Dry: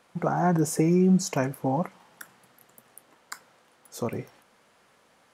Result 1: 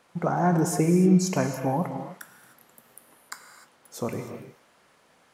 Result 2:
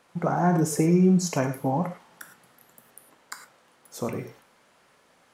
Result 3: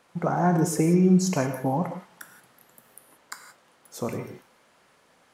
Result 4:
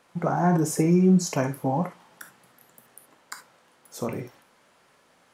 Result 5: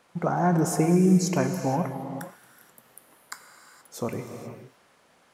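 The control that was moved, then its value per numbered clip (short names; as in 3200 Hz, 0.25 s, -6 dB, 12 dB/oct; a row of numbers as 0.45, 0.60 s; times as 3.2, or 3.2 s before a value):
non-linear reverb, gate: 330, 130, 200, 90, 500 ms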